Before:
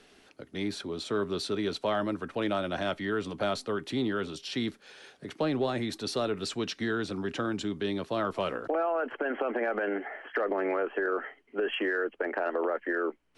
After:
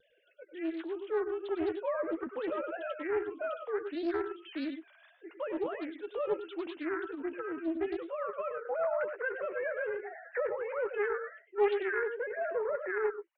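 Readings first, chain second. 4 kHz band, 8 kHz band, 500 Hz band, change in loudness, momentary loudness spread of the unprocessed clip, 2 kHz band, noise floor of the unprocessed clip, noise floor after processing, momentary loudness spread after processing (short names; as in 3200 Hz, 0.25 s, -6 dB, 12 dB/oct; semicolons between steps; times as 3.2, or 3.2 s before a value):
-16.0 dB, under -30 dB, -1.5 dB, -3.5 dB, 6 LU, -4.0 dB, -62 dBFS, -65 dBFS, 7 LU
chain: sine-wave speech; vibrato 3 Hz 72 cents; doubler 12 ms -9.5 dB; on a send: tapped delay 98/113 ms -10.5/-11 dB; on the sum: Doppler distortion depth 0.27 ms; gain -4.5 dB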